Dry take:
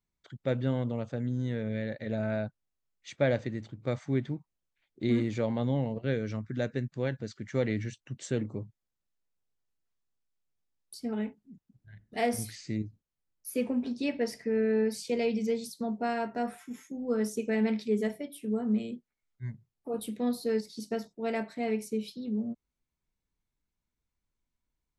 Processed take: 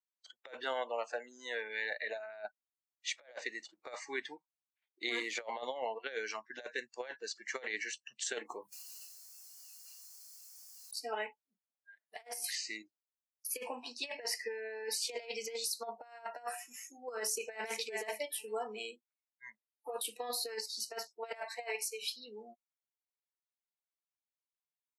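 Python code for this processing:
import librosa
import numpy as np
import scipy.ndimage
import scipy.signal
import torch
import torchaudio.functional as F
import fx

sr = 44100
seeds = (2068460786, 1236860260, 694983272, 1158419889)

y = fx.bessel_highpass(x, sr, hz=240.0, order=2, at=(0.64, 2.26))
y = fx.env_flatten(y, sr, amount_pct=70, at=(8.49, 10.96))
y = fx.echo_throw(y, sr, start_s=17.16, length_s=0.65, ms=410, feedback_pct=15, wet_db=-9.5)
y = fx.highpass(y, sr, hz=fx.line((21.21, 210.0), (22.01, 660.0)), slope=12, at=(21.21, 22.01), fade=0.02)
y = scipy.signal.sosfilt(scipy.signal.butter(4, 620.0, 'highpass', fs=sr, output='sos'), y)
y = fx.noise_reduce_blind(y, sr, reduce_db=21)
y = fx.over_compress(y, sr, threshold_db=-43.0, ratio=-0.5)
y = y * 10.0 ** (4.5 / 20.0)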